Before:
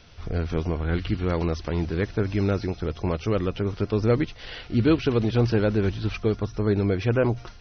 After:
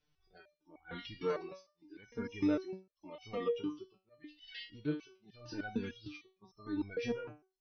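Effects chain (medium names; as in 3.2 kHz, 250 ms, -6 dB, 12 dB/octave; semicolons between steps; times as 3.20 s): spectral noise reduction 25 dB; 3.60–5.00 s: compression 6:1, threshold -27 dBFS, peak gain reduction 11.5 dB; peak limiter -18.5 dBFS, peak gain reduction 8.5 dB; tremolo 0.87 Hz, depth 100%; resonator arpeggio 6.6 Hz 150–750 Hz; trim +8 dB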